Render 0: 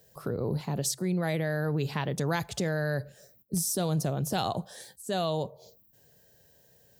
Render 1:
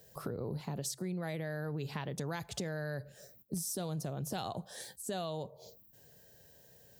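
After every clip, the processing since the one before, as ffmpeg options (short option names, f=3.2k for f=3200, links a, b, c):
-af "acompressor=threshold=-39dB:ratio=3,volume=1dB"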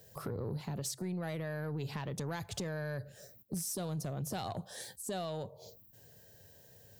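-af "equalizer=f=100:w=4.1:g=8.5,asoftclip=type=tanh:threshold=-30dB,volume=1dB"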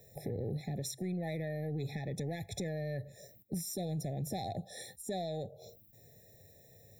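-af "afftfilt=real='re*eq(mod(floor(b*sr/1024/850),2),0)':imag='im*eq(mod(floor(b*sr/1024/850),2),0)':win_size=1024:overlap=0.75,volume=1dB"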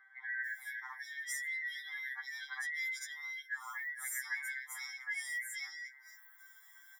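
-filter_complex "[0:a]afftfilt=real='real(if(lt(b,272),68*(eq(floor(b/68),0)*3+eq(floor(b/68),1)*0+eq(floor(b/68),2)*1+eq(floor(b/68),3)*2)+mod(b,68),b),0)':imag='imag(if(lt(b,272),68*(eq(floor(b/68),0)*3+eq(floor(b/68),1)*0+eq(floor(b/68),2)*1+eq(floor(b/68),3)*2)+mod(b,68),b),0)':win_size=2048:overlap=0.75,acrossover=split=590|2400[a][b][c];[a]adelay=50[d];[c]adelay=450[e];[d][b][e]amix=inputs=3:normalize=0,afftfilt=real='re*2.45*eq(mod(b,6),0)':imag='im*2.45*eq(mod(b,6),0)':win_size=2048:overlap=0.75,volume=3.5dB"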